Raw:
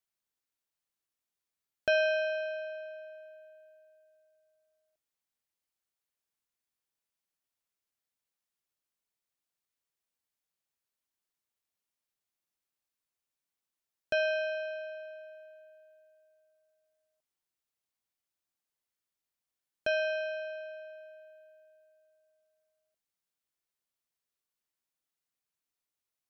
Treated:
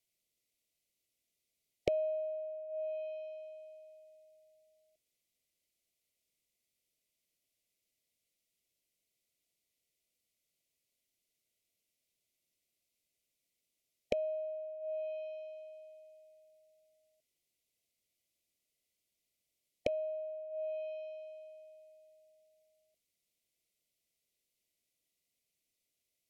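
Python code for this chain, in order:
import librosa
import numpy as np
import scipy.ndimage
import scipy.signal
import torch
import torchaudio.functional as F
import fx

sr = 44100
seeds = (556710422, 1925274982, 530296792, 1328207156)

y = fx.brickwall_bandstop(x, sr, low_hz=720.0, high_hz=1900.0)
y = fx.env_lowpass_down(y, sr, base_hz=330.0, full_db=-36.5)
y = F.gain(torch.from_numpy(y), 6.0).numpy()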